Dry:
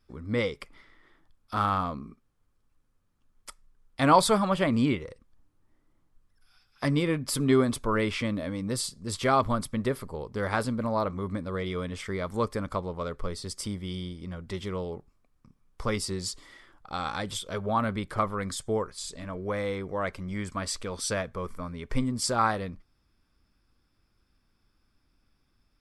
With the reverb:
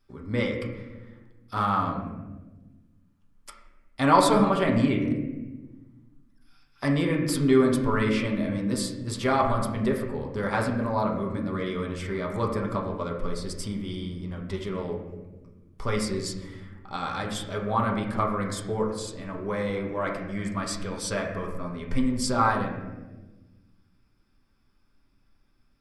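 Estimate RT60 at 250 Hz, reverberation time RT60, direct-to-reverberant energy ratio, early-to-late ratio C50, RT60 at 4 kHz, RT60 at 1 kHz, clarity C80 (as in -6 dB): 1.9 s, 1.2 s, -0.5 dB, 5.0 dB, 0.80 s, 0.95 s, 7.0 dB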